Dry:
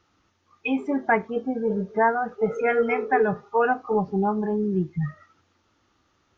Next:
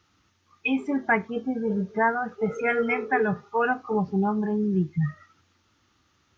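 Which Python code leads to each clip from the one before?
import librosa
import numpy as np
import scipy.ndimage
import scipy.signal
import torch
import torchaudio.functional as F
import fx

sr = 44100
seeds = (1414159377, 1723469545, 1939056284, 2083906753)

y = scipy.signal.sosfilt(scipy.signal.butter(2, 55.0, 'highpass', fs=sr, output='sos'), x)
y = fx.peak_eq(y, sr, hz=580.0, db=-8.0, octaves=2.2)
y = y * 10.0 ** (3.5 / 20.0)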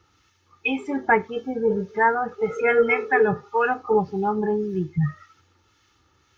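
y = fx.harmonic_tremolo(x, sr, hz=1.8, depth_pct=50, crossover_hz=1300.0)
y = y + 0.47 * np.pad(y, (int(2.3 * sr / 1000.0), 0))[:len(y)]
y = y * 10.0 ** (5.0 / 20.0)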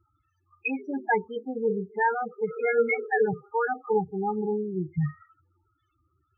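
y = fx.spec_topn(x, sr, count=8)
y = y * 10.0 ** (-4.5 / 20.0)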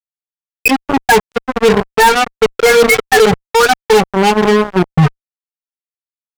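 y = fx.cheby_harmonics(x, sr, harmonics=(3, 5, 7, 8), levels_db=(-35, -45, -17, -43), full_scale_db=-12.5)
y = fx.fuzz(y, sr, gain_db=36.0, gate_db=-44.0)
y = y * 10.0 ** (9.0 / 20.0)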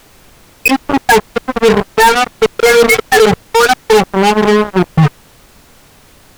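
y = fx.dmg_noise_colour(x, sr, seeds[0], colour='pink', level_db=-44.0)
y = y * 10.0 ** (1.0 / 20.0)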